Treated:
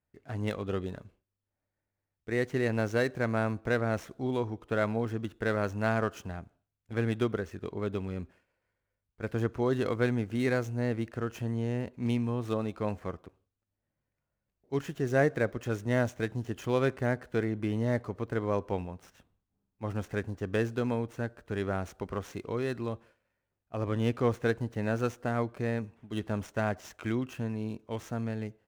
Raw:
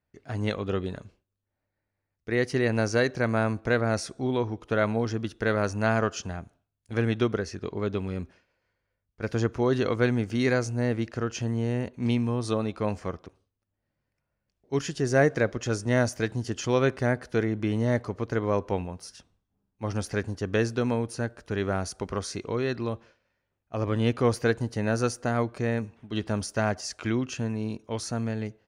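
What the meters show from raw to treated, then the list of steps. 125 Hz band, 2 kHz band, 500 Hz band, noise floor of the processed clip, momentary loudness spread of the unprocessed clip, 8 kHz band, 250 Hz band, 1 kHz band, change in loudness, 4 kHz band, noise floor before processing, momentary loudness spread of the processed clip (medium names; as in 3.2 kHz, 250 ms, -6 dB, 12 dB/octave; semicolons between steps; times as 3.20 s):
-4.0 dB, -4.5 dB, -4.0 dB, under -85 dBFS, 9 LU, -12.5 dB, -4.0 dB, -4.0 dB, -4.0 dB, -8.5 dB, -83 dBFS, 9 LU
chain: median filter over 9 samples; trim -4 dB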